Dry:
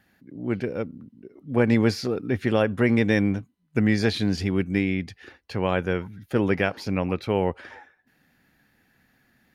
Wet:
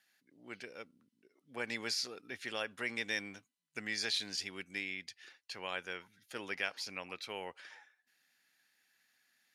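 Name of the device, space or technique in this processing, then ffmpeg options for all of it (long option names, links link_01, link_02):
piezo pickup straight into a mixer: -af "lowpass=7800,aderivative,volume=2.5dB"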